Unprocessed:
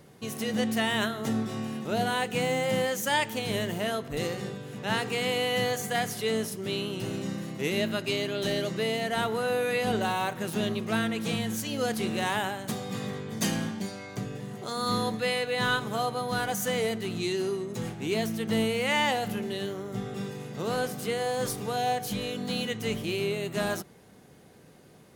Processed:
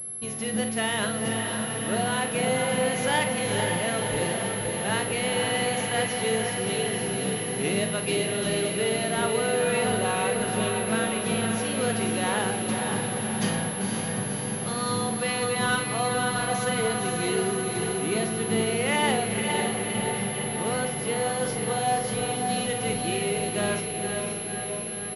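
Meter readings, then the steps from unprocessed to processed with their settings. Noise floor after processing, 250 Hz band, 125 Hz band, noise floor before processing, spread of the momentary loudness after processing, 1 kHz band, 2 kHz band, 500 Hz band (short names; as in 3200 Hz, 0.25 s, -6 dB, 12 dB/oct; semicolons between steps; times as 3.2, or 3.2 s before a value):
-32 dBFS, +2.0 dB, +3.5 dB, -54 dBFS, 4 LU, +3.5 dB, +3.0 dB, +3.0 dB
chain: doubler 47 ms -8.5 dB; diffused feedback echo 0.522 s, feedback 71%, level -4 dB; pulse-width modulation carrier 11000 Hz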